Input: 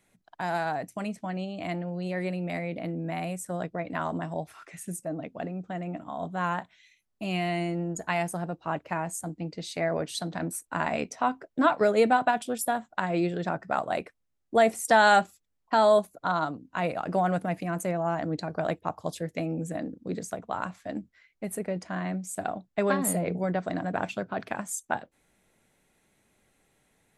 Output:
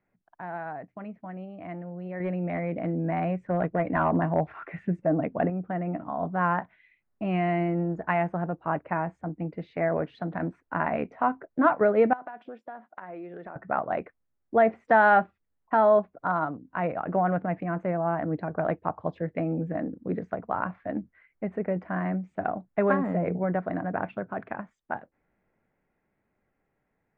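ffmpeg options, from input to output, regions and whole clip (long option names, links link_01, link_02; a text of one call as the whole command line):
ffmpeg -i in.wav -filter_complex "[0:a]asettb=1/sr,asplit=3[link_01][link_02][link_03];[link_01]atrim=end=2.204[link_04];[link_02]atrim=start=2.2:end=5.5,asetpts=PTS-STARTPTS,afade=type=in:duration=0.004:curve=qsin,afade=type=out:start_time=3.296:duration=0.004:curve=qsin,bandreject=frequency=1300:width=22,acontrast=33,volume=18.5dB,asoftclip=hard,volume=-18.5dB[link_05];[link_03]atrim=start=5.496[link_06];[link_04][link_05]acrossfade=duration=0.004:curve1=hsin:curve2=qsin[link_07];[link_07][link_06]acrossfade=duration=0.004:curve1=qsin:curve2=hsin,asettb=1/sr,asplit=3[link_08][link_09][link_10];[link_08]atrim=end=12.134[link_11];[link_09]atrim=start=12.13:end=13.56,asetpts=PTS-STARTPTS,afade=type=in:duration=0.004:curve=qsin,afade=type=out:start_time=1.426:duration=0.004:curve=qsin,highpass=290,acompressor=threshold=-38dB:ratio=5:attack=3.2:release=140:knee=1:detection=peak[link_12];[link_10]atrim=start=13.556[link_13];[link_11][link_12]acrossfade=duration=0.004:curve1=hsin:curve2=qsin[link_14];[link_14][link_13]acrossfade=duration=0.004:curve1=qsin:curve2=hsin,lowpass=frequency=2000:width=0.5412,lowpass=frequency=2000:width=1.3066,dynaudnorm=framelen=400:gausssize=17:maxgain=11.5dB,volume=-6.5dB" out.wav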